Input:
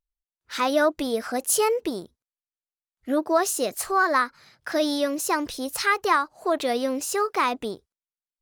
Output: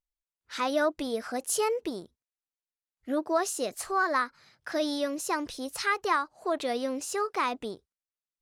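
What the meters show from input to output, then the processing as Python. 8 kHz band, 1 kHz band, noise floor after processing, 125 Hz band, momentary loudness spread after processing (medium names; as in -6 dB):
-6.5 dB, -5.5 dB, under -85 dBFS, no reading, 11 LU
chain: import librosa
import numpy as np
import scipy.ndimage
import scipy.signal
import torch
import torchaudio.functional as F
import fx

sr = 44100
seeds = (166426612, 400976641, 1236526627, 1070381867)

y = scipy.signal.sosfilt(scipy.signal.butter(2, 11000.0, 'lowpass', fs=sr, output='sos'), x)
y = F.gain(torch.from_numpy(y), -5.5).numpy()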